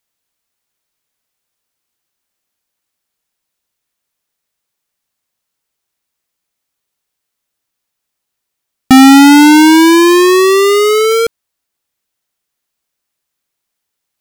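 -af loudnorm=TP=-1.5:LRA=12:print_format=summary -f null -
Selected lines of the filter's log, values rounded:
Input Integrated:     -5.8 LUFS
Input True Peak:      -0.1 dBTP
Input LRA:            10.4 LU
Input Threshold:     -15.9 LUFS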